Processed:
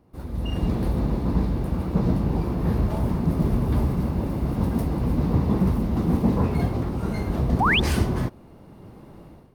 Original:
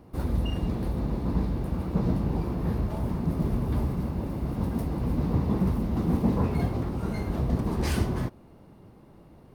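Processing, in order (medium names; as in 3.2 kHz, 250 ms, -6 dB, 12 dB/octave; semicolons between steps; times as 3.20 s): level rider gain up to 16 dB; painted sound rise, 7.60–7.80 s, 690–3700 Hz -12 dBFS; trim -8 dB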